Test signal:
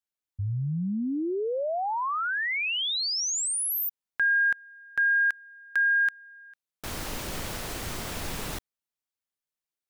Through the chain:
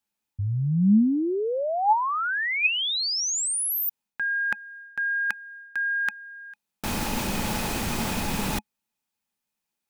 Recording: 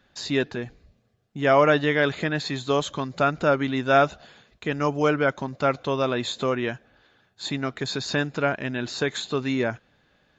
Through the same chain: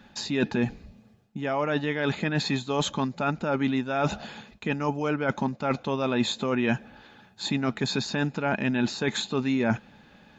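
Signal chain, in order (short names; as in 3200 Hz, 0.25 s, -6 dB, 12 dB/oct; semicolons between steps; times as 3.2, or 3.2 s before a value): reverse; compressor 10:1, threshold -32 dBFS; reverse; small resonant body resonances 210/850/2500 Hz, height 11 dB, ringing for 50 ms; gain +7 dB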